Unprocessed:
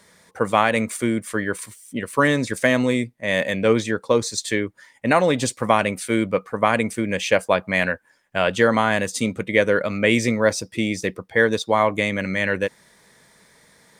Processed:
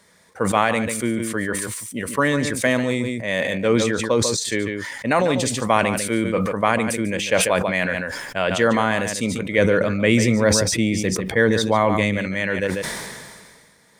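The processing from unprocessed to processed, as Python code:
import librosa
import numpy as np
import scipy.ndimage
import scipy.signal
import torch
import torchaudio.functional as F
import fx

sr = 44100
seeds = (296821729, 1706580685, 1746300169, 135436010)

y = fx.low_shelf(x, sr, hz=240.0, db=8.0, at=(9.58, 12.18))
y = y + 10.0 ** (-12.0 / 20.0) * np.pad(y, (int(145 * sr / 1000.0), 0))[:len(y)]
y = fx.sustainer(y, sr, db_per_s=32.0)
y = F.gain(torch.from_numpy(y), -2.0).numpy()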